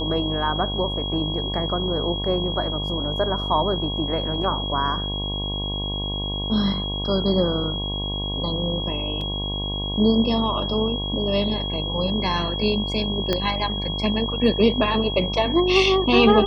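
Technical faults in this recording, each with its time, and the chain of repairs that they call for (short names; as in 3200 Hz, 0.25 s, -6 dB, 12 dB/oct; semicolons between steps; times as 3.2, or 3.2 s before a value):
buzz 50 Hz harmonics 22 -29 dBFS
tone 3300 Hz -28 dBFS
9.21 gap 2.7 ms
13.33 pop -8 dBFS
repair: de-click; de-hum 50 Hz, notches 22; notch 3300 Hz, Q 30; interpolate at 9.21, 2.7 ms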